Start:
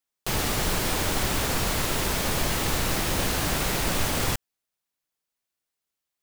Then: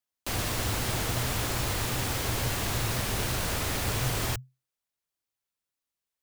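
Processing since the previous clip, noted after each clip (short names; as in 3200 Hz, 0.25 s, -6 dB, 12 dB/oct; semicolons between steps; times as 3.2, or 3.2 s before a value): frequency shift -130 Hz; gain -4 dB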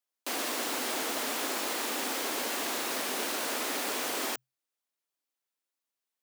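elliptic high-pass 250 Hz, stop band 80 dB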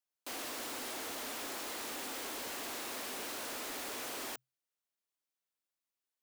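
overloaded stage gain 35 dB; gain -4.5 dB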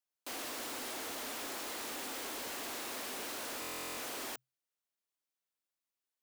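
stuck buffer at 3.6, samples 1024, times 15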